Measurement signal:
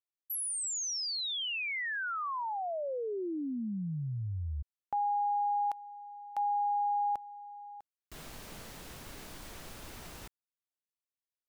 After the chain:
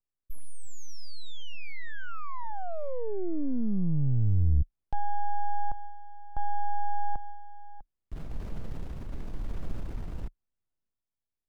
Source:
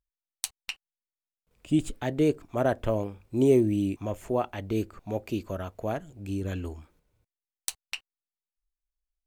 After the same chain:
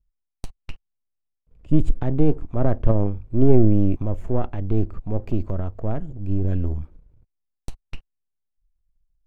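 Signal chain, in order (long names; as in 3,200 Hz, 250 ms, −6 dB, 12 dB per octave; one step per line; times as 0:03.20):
gain on one half-wave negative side −7 dB
spectral tilt −4.5 dB per octave
transient designer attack 0 dB, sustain +6 dB
level −2 dB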